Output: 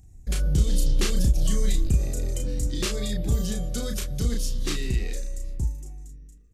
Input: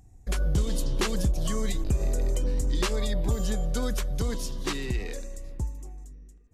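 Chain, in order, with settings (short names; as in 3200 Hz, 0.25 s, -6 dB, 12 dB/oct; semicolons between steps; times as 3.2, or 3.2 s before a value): bell 890 Hz -10.5 dB 2.4 oct; notch 980 Hz, Q 12; doubler 34 ms -4 dB; gain +3 dB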